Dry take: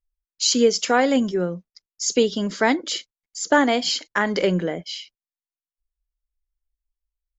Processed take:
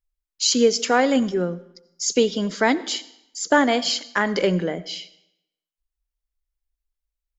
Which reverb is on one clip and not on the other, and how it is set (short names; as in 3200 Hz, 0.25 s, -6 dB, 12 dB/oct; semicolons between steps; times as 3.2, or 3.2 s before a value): digital reverb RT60 0.82 s, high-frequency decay 0.9×, pre-delay 45 ms, DRR 18 dB